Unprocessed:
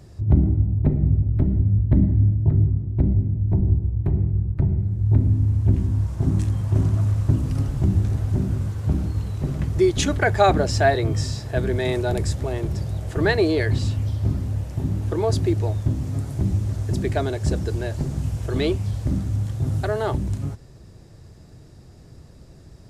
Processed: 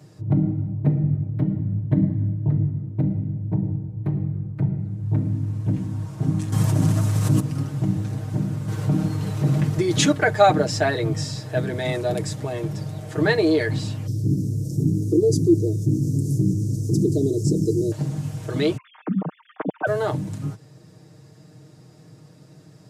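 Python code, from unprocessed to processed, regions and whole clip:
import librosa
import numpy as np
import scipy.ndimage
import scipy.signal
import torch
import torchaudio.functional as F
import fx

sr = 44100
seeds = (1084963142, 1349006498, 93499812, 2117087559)

y = fx.chain(x, sr, fx.high_shelf(hz=4400.0, db=10.0),
    fx.env_flatten(amount_pct=100), at=(6.52, 7.4))
y = fx.chain(y, sr, fx.highpass(hz=57.0, slope=12),
    fx.env_flatten(amount_pct=50), at=(8.68, 10.12))
y = fx.chain(y, sr, fx.ellip_bandstop(low_hz=390.0, high_hz=5600.0, order=3, stop_db=60),
    fx.dynamic_eq(hz=370.0, q=3.1, threshold_db=-41.0, ratio=4.0, max_db=7),
    fx.env_flatten(amount_pct=50), at=(14.07, 17.92))
y = fx.chain(y, sr, fx.sine_speech(),
    fx.bandpass_edges(low_hz=230.0, high_hz=2700.0), at=(18.77, 19.87))
y = scipy.signal.sosfilt(scipy.signal.butter(4, 110.0, 'highpass', fs=sr, output='sos'), y)
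y = y + 0.74 * np.pad(y, (int(6.5 * sr / 1000.0), 0))[:len(y)]
y = y * 10.0 ** (-1.5 / 20.0)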